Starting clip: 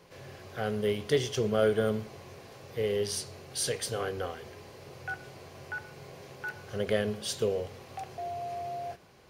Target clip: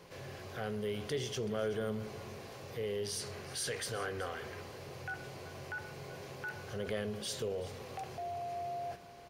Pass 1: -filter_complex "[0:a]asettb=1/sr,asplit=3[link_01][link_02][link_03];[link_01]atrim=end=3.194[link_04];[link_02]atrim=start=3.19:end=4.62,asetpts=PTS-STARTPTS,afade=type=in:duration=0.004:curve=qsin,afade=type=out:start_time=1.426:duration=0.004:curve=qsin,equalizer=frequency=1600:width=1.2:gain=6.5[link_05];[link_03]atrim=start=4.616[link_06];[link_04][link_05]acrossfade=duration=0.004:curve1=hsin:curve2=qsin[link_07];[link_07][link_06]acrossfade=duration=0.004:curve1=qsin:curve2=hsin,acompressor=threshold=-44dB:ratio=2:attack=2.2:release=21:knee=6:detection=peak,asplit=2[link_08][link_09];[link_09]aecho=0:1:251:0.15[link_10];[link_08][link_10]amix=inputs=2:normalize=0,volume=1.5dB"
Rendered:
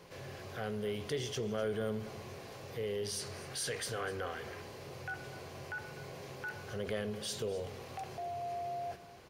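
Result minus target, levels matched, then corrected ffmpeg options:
echo 128 ms early
-filter_complex "[0:a]asettb=1/sr,asplit=3[link_01][link_02][link_03];[link_01]atrim=end=3.194[link_04];[link_02]atrim=start=3.19:end=4.62,asetpts=PTS-STARTPTS,afade=type=in:duration=0.004:curve=qsin,afade=type=out:start_time=1.426:duration=0.004:curve=qsin,equalizer=frequency=1600:width=1.2:gain=6.5[link_05];[link_03]atrim=start=4.616[link_06];[link_04][link_05]acrossfade=duration=0.004:curve1=hsin:curve2=qsin[link_07];[link_07][link_06]acrossfade=duration=0.004:curve1=qsin:curve2=hsin,acompressor=threshold=-44dB:ratio=2:attack=2.2:release=21:knee=6:detection=peak,asplit=2[link_08][link_09];[link_09]aecho=0:1:379:0.15[link_10];[link_08][link_10]amix=inputs=2:normalize=0,volume=1.5dB"

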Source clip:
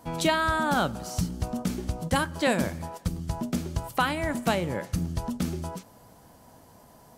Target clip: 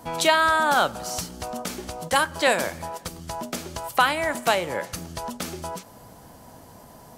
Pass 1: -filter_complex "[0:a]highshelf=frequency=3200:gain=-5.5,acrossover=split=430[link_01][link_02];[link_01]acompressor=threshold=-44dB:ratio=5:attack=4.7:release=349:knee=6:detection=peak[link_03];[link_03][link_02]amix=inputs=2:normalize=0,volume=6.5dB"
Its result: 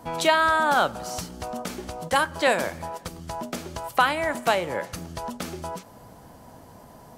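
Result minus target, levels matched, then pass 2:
8,000 Hz band −4.0 dB
-filter_complex "[0:a]acrossover=split=430[link_01][link_02];[link_01]acompressor=threshold=-44dB:ratio=5:attack=4.7:release=349:knee=6:detection=peak[link_03];[link_03][link_02]amix=inputs=2:normalize=0,volume=6.5dB"

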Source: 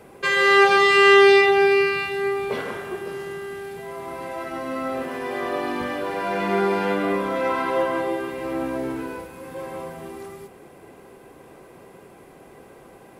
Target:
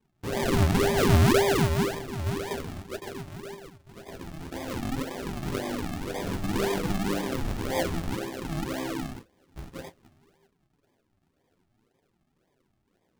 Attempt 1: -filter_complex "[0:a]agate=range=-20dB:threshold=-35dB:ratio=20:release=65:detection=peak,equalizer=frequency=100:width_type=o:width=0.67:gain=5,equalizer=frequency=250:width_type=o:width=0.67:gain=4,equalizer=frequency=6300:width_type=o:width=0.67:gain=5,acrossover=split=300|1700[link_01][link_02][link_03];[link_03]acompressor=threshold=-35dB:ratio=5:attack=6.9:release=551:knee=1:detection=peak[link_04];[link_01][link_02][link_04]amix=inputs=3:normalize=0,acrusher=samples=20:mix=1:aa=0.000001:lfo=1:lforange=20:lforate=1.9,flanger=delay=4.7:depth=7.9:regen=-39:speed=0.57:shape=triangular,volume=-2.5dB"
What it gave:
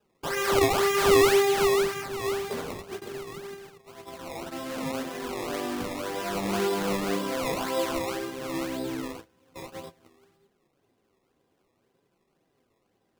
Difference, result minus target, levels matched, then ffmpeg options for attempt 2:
sample-and-hold swept by an LFO: distortion −34 dB
-filter_complex "[0:a]agate=range=-20dB:threshold=-35dB:ratio=20:release=65:detection=peak,equalizer=frequency=100:width_type=o:width=0.67:gain=5,equalizer=frequency=250:width_type=o:width=0.67:gain=4,equalizer=frequency=6300:width_type=o:width=0.67:gain=5,acrossover=split=300|1700[link_01][link_02][link_03];[link_03]acompressor=threshold=-35dB:ratio=5:attack=6.9:release=551:knee=1:detection=peak[link_04];[link_01][link_02][link_04]amix=inputs=3:normalize=0,acrusher=samples=62:mix=1:aa=0.000001:lfo=1:lforange=62:lforate=1.9,flanger=delay=4.7:depth=7.9:regen=-39:speed=0.57:shape=triangular,volume=-2.5dB"

